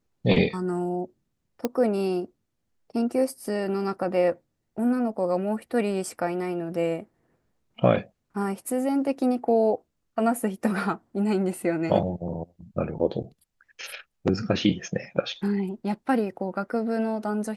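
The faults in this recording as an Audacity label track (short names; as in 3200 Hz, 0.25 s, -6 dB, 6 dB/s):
1.650000	1.650000	pop -12 dBFS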